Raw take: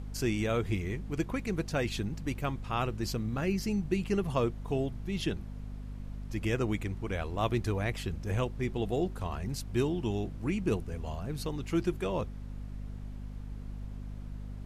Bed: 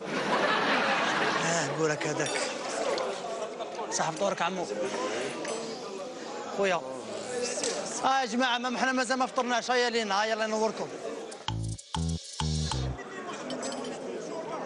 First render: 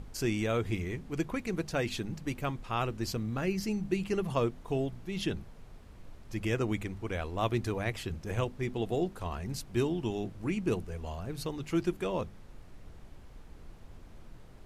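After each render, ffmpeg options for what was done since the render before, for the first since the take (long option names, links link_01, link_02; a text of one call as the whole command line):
ffmpeg -i in.wav -af "bandreject=frequency=50:width_type=h:width=6,bandreject=frequency=100:width_type=h:width=6,bandreject=frequency=150:width_type=h:width=6,bandreject=frequency=200:width_type=h:width=6,bandreject=frequency=250:width_type=h:width=6" out.wav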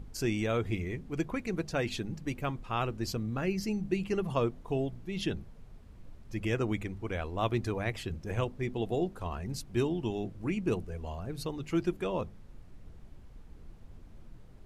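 ffmpeg -i in.wav -af "afftdn=noise_reduction=6:noise_floor=-51" out.wav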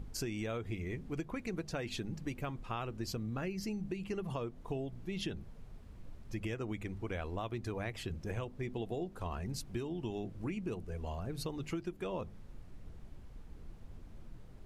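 ffmpeg -i in.wav -af "alimiter=limit=-21.5dB:level=0:latency=1:release=386,acompressor=threshold=-35dB:ratio=6" out.wav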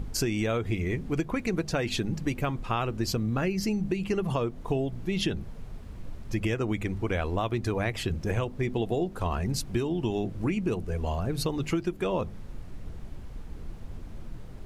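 ffmpeg -i in.wav -af "volume=10.5dB" out.wav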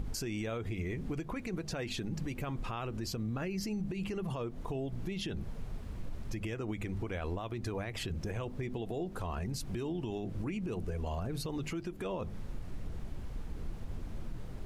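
ffmpeg -i in.wav -af "acompressor=threshold=-30dB:ratio=6,alimiter=level_in=5dB:limit=-24dB:level=0:latency=1:release=54,volume=-5dB" out.wav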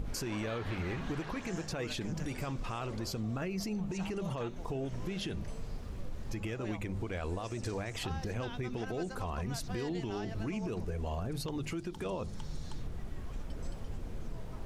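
ffmpeg -i in.wav -i bed.wav -filter_complex "[1:a]volume=-19.5dB[link_01];[0:a][link_01]amix=inputs=2:normalize=0" out.wav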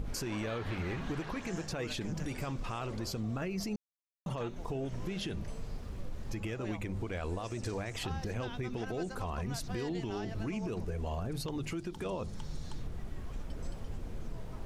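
ffmpeg -i in.wav -filter_complex "[0:a]asplit=3[link_01][link_02][link_03];[link_01]atrim=end=3.76,asetpts=PTS-STARTPTS,afade=type=out:start_time=3.756:duration=0.004:curve=hsin[link_04];[link_02]atrim=start=3.76:end=4.26,asetpts=PTS-STARTPTS,volume=0[link_05];[link_03]atrim=start=4.26,asetpts=PTS-STARTPTS,afade=type=in:duration=0.004:curve=hsin[link_06];[link_04][link_05][link_06]concat=n=3:v=0:a=1" out.wav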